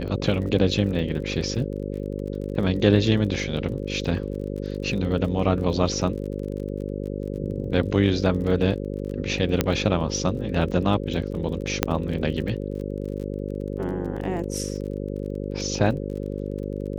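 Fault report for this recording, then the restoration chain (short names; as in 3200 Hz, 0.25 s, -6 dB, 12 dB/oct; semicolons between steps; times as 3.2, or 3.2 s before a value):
buzz 50 Hz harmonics 11 -30 dBFS
crackle 32/s -34 dBFS
9.61 pop -5 dBFS
11.83 pop -2 dBFS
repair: de-click; de-hum 50 Hz, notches 11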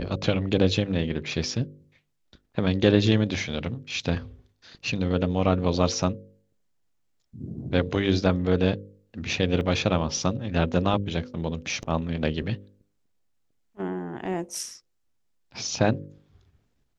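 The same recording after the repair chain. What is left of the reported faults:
9.61 pop
11.83 pop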